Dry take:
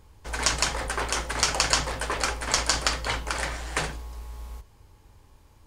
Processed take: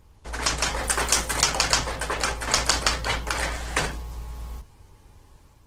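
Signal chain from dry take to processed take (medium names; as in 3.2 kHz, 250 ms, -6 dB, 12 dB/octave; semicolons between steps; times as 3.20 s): 0.83–1.42 s: treble shelf 4.3 kHz -> 6.9 kHz +11.5 dB; level rider gain up to 3 dB; Opus 16 kbps 48 kHz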